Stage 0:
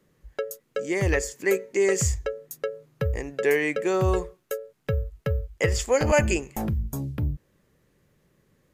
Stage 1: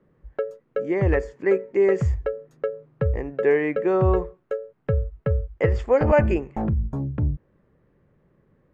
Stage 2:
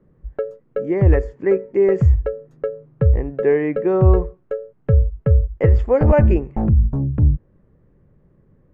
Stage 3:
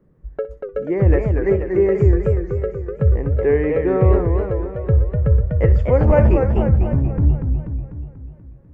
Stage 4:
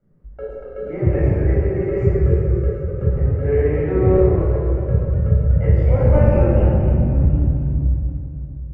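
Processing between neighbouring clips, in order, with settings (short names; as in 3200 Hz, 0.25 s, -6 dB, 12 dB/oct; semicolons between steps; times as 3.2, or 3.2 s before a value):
LPF 1400 Hz 12 dB/oct; gain +3.5 dB
tilt -2.5 dB/oct
flutter echo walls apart 10.7 m, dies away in 0.25 s; warbling echo 0.244 s, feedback 55%, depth 187 cents, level -5 dB; gain -1 dB
reverb RT60 1.7 s, pre-delay 15 ms, DRR -7 dB; gain -13.5 dB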